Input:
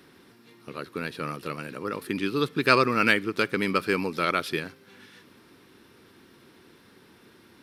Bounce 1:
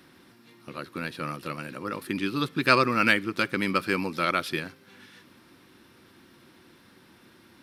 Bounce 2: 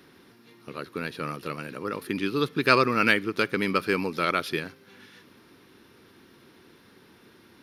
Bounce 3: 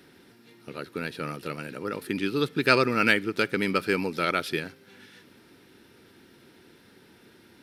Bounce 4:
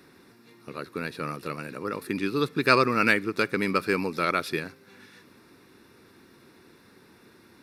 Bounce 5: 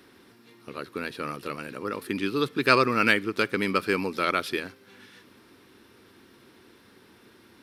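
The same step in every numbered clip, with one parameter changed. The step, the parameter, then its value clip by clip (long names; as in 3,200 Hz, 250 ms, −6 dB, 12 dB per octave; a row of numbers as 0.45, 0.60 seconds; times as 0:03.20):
notch filter, centre frequency: 430, 7,900, 1,100, 3,100, 160 Hertz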